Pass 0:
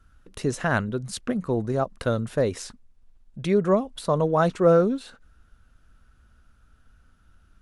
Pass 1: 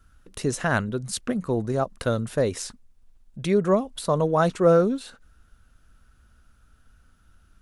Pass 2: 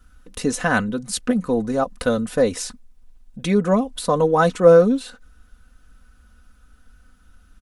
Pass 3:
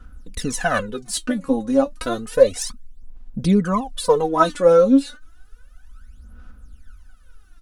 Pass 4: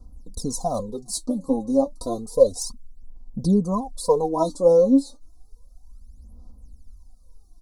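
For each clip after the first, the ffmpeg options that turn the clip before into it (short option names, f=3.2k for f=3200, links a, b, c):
-af "highshelf=f=5.7k:g=7"
-af "aecho=1:1:4:0.67,volume=3dB"
-af "aphaser=in_gain=1:out_gain=1:delay=3.7:decay=0.79:speed=0.31:type=sinusoidal,volume=-3.5dB"
-af "asuperstop=centerf=2100:order=12:qfactor=0.67,volume=-2.5dB"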